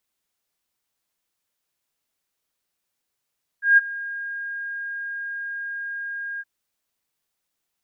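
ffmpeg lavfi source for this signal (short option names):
-f lavfi -i "aevalsrc='0.355*sin(2*PI*1620*t)':d=2.819:s=44100,afade=t=in:d=0.154,afade=t=out:st=0.154:d=0.024:silence=0.112,afade=t=out:st=2.78:d=0.039"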